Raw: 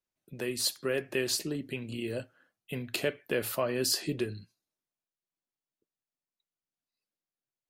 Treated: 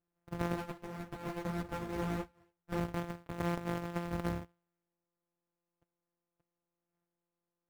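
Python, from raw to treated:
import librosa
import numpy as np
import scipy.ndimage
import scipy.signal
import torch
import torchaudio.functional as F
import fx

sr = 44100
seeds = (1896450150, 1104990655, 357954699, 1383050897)

y = np.r_[np.sort(x[:len(x) // 256 * 256].reshape(-1, 256), axis=1).ravel(), x[len(x) // 256 * 256:]]
y = scipy.signal.sosfilt(scipy.signal.butter(2, 1800.0, 'lowpass', fs=sr, output='sos'), y)
y = fx.quant_float(y, sr, bits=2)
y = fx.over_compress(y, sr, threshold_db=-35.0, ratio=-0.5)
y = fx.ensemble(y, sr, at=(0.55, 2.77), fade=0.02)
y = F.gain(torch.from_numpy(y), 1.0).numpy()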